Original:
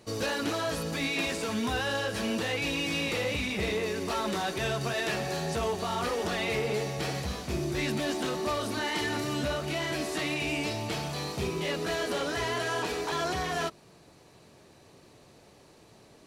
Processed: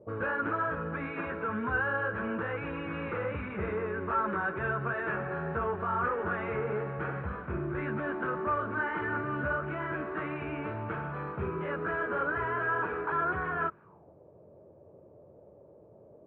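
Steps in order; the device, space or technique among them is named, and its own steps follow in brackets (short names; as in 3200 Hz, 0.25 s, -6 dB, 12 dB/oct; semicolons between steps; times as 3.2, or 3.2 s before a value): envelope filter bass rig (envelope low-pass 520–1500 Hz up, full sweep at -35 dBFS; speaker cabinet 70–2400 Hz, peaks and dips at 87 Hz +6 dB, 260 Hz -5 dB, 720 Hz -8 dB, 1900 Hz -8 dB); gain -2 dB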